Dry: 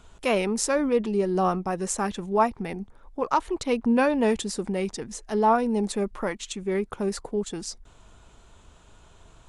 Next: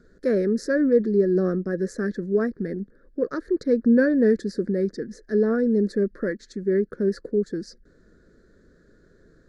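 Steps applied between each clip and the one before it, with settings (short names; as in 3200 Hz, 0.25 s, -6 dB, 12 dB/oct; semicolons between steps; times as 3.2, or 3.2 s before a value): EQ curve 110 Hz 0 dB, 170 Hz +10 dB, 330 Hz +13 dB, 530 Hz +11 dB, 860 Hz -23 dB, 1700 Hz +13 dB, 2800 Hz -27 dB, 4400 Hz +3 dB, 8400 Hz -14 dB, 13000 Hz -7 dB; gain -7 dB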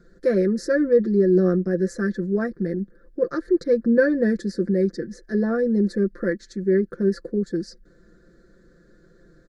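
comb 5.8 ms, depth 72%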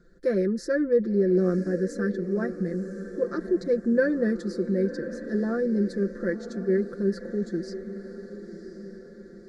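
diffused feedback echo 1.035 s, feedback 51%, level -12 dB; gain -4.5 dB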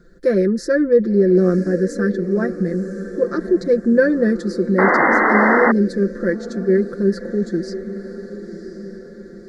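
painted sound noise, 4.78–5.72, 210–2100 Hz -23 dBFS; gain +8 dB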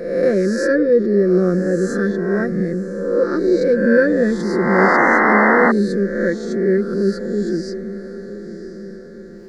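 spectral swells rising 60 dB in 1.02 s; gain -1.5 dB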